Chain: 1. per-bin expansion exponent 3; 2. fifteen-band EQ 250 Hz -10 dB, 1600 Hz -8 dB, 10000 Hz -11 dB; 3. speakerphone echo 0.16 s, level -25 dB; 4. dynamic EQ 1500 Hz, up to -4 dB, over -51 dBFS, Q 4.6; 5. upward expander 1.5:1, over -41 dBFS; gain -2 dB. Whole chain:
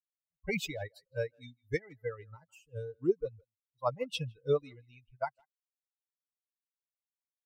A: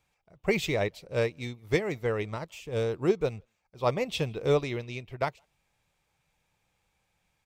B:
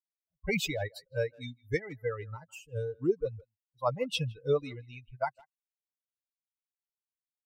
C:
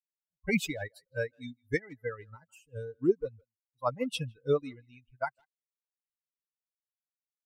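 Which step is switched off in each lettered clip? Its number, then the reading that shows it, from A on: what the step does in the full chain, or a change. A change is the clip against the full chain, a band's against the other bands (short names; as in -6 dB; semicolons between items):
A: 1, momentary loudness spread change -6 LU; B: 5, crest factor change -2.5 dB; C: 2, 250 Hz band +4.5 dB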